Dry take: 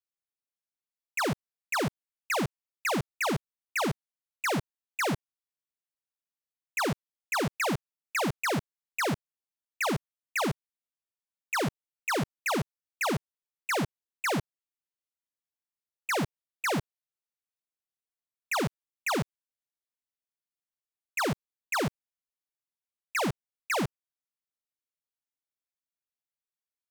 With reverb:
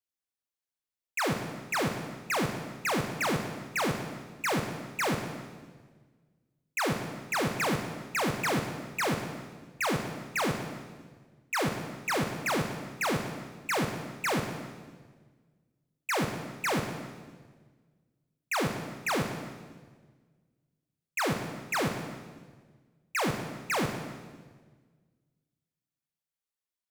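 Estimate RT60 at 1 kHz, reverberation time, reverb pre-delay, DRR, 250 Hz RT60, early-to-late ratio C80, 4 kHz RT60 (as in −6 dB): 1.4 s, 1.5 s, 19 ms, 4.5 dB, 1.8 s, 7.5 dB, 1.3 s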